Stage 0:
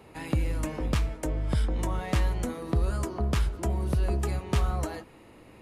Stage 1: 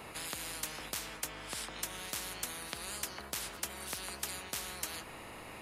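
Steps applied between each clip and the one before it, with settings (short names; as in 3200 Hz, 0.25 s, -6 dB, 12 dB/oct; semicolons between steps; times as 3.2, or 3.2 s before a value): high shelf 9400 Hz +4.5 dB; spectral compressor 10:1; gain -1 dB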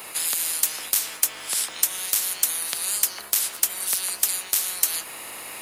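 RIAA curve recording; in parallel at -1 dB: vocal rider within 4 dB 0.5 s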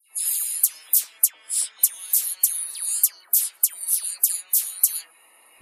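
dispersion lows, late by 0.11 s, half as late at 2300 Hz; spectral expander 2.5:1; gain +4 dB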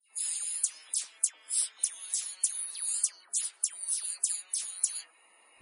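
gain -5.5 dB; MP3 40 kbps 32000 Hz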